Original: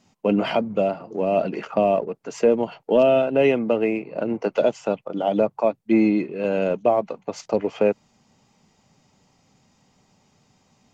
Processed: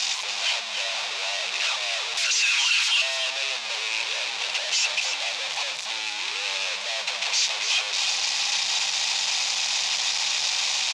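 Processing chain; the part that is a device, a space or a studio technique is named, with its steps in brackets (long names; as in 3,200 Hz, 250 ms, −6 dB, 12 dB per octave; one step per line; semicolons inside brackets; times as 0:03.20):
0:02.17–0:03.02: Chebyshev high-pass filter 1,400 Hz, order 4
0:05.38–0:05.96: comb filter 3.9 ms, depth 38%
home computer beeper (sign of each sample alone; loudspeaker in its box 800–5,800 Hz, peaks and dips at 1,300 Hz −4 dB, 2,500 Hz +7 dB, 3,700 Hz +6 dB)
drawn EQ curve 160 Hz 0 dB, 260 Hz −13 dB, 840 Hz +1 dB, 1,600 Hz 0 dB, 6,800 Hz +13 dB
single-tap delay 285 ms −7 dB
level −6.5 dB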